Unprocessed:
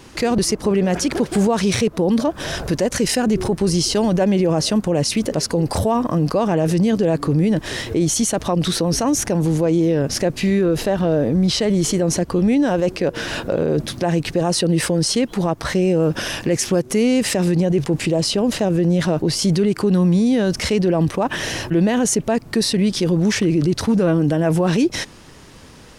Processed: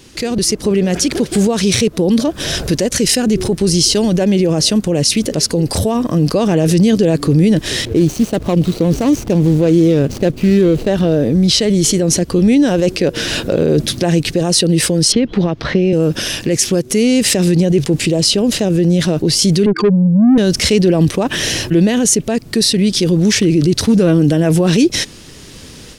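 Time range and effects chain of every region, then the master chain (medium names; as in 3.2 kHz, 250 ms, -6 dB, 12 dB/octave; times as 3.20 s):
7.85–10.88 s: median filter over 25 samples + tape noise reduction on one side only decoder only
15.12–15.93 s: distance through air 260 m + three bands compressed up and down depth 100%
19.66–20.38 s: spectral contrast enhancement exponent 3.4 + resonant low shelf 170 Hz -6 dB, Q 1.5 + overdrive pedal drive 20 dB, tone 4.3 kHz, clips at -8.5 dBFS
whole clip: FFT filter 420 Hz 0 dB, 920 Hz -8 dB, 3.6 kHz +4 dB; level rider gain up to 8 dB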